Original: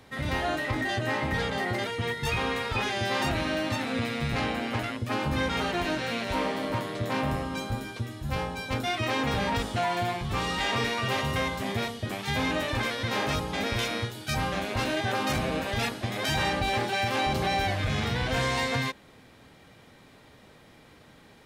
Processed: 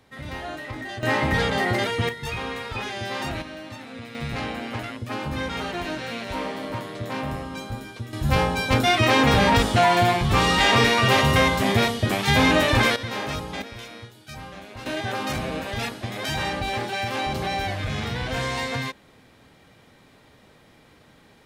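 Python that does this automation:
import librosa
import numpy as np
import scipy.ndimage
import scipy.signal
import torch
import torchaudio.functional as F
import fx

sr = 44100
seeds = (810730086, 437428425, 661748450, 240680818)

y = fx.gain(x, sr, db=fx.steps((0.0, -5.0), (1.03, 6.5), (2.09, -2.0), (3.42, -9.0), (4.15, -1.0), (8.13, 10.0), (12.96, -1.0), (13.62, -10.0), (14.86, 0.0)))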